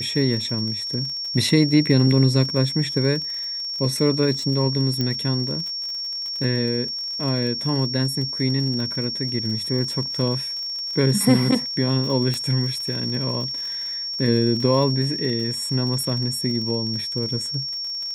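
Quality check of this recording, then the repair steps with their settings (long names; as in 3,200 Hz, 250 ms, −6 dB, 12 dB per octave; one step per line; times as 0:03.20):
surface crackle 52 per second −30 dBFS
whistle 5,500 Hz −26 dBFS
0:05.01: click −11 dBFS
0:12.34: click −12 dBFS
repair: click removal
notch filter 5,500 Hz, Q 30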